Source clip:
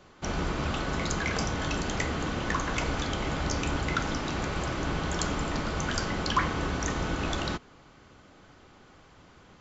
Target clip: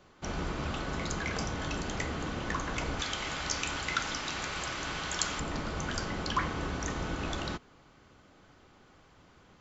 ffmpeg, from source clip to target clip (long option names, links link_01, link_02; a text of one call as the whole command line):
ffmpeg -i in.wav -filter_complex "[0:a]asettb=1/sr,asplit=3[link_01][link_02][link_03];[link_01]atrim=end=3.004[link_04];[link_02]atrim=start=3:end=5.4,asetpts=PTS-STARTPTS,afade=type=in:duration=0.004:curve=qsin,afade=type=out:start_time=2.396:duration=0.004:curve=qsin,tiltshelf=frequency=890:gain=-7.5[link_05];[link_03]atrim=start=5.396[link_06];[link_04][link_05]acrossfade=duration=0.004:curve1=hsin:curve2=qsin[link_07];[link_07][link_06]acrossfade=duration=0.004:curve1=qsin:curve2=hsin,volume=-4.5dB" out.wav